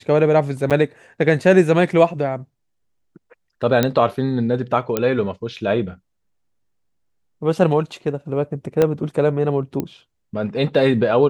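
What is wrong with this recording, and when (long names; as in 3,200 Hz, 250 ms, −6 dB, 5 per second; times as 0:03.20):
0:00.70–0:00.71: drop-out 7.6 ms
0:03.83: click −3 dBFS
0:04.97: click −5 dBFS
0:08.82: click −5 dBFS
0:09.80: click −11 dBFS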